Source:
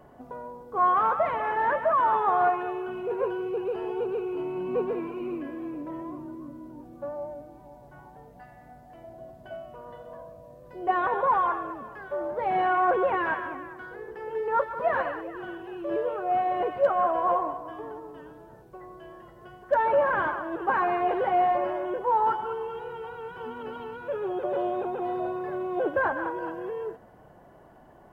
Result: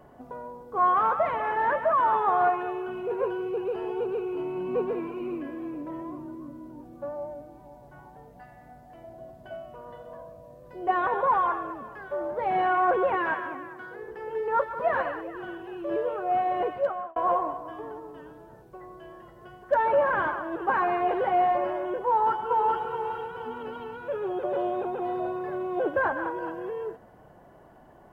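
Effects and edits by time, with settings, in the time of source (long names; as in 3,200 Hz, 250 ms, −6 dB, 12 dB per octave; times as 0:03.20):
0:13.16–0:14.03: high-pass filter 110 Hz
0:16.66–0:17.16: fade out
0:22.08–0:22.84: delay throw 420 ms, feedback 30%, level −1.5 dB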